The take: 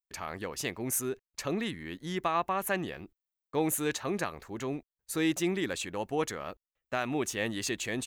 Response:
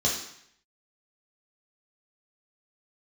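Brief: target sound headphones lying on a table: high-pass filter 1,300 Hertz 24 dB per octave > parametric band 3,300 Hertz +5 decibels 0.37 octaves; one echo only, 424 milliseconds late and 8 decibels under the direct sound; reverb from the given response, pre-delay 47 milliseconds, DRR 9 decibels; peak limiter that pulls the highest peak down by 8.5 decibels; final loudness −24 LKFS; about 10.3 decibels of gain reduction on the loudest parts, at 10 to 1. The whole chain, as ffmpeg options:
-filter_complex "[0:a]acompressor=threshold=-35dB:ratio=10,alimiter=level_in=6.5dB:limit=-24dB:level=0:latency=1,volume=-6.5dB,aecho=1:1:424:0.398,asplit=2[link_01][link_02];[1:a]atrim=start_sample=2205,adelay=47[link_03];[link_02][link_03]afir=irnorm=-1:irlink=0,volume=-19.5dB[link_04];[link_01][link_04]amix=inputs=2:normalize=0,highpass=frequency=1300:width=0.5412,highpass=frequency=1300:width=1.3066,equalizer=frequency=3300:width_type=o:width=0.37:gain=5,volume=20dB"

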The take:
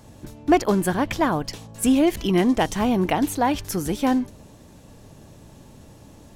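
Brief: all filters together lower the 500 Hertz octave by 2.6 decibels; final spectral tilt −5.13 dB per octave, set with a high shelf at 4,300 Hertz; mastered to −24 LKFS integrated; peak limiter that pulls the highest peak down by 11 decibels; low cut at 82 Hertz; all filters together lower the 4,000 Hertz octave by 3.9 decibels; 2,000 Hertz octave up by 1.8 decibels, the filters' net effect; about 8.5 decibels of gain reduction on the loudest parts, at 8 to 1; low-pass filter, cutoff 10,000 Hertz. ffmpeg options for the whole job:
ffmpeg -i in.wav -af "highpass=82,lowpass=10000,equalizer=frequency=500:width_type=o:gain=-4,equalizer=frequency=2000:width_type=o:gain=4.5,equalizer=frequency=4000:width_type=o:gain=-5.5,highshelf=frequency=4300:gain=-4.5,acompressor=threshold=-23dB:ratio=8,volume=10.5dB,alimiter=limit=-14.5dB:level=0:latency=1" out.wav

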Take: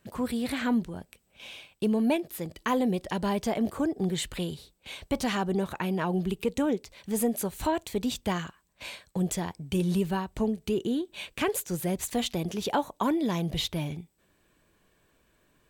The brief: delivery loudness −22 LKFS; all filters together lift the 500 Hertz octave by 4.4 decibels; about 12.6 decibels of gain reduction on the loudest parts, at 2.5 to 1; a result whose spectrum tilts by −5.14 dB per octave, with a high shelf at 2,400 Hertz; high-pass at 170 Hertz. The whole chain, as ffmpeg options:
ffmpeg -i in.wav -af "highpass=170,equalizer=frequency=500:width_type=o:gain=6,highshelf=frequency=2400:gain=-7.5,acompressor=threshold=-39dB:ratio=2.5,volume=17.5dB" out.wav

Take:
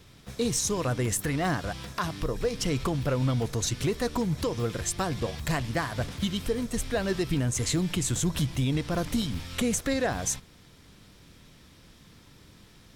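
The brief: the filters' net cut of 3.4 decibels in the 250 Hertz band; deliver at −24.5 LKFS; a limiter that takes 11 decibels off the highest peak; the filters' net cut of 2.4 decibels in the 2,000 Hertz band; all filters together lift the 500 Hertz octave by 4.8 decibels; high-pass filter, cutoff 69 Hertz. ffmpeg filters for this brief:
ffmpeg -i in.wav -af "highpass=69,equalizer=frequency=250:width_type=o:gain=-7,equalizer=frequency=500:width_type=o:gain=7.5,equalizer=frequency=2000:width_type=o:gain=-3.5,volume=9dB,alimiter=limit=-15dB:level=0:latency=1" out.wav

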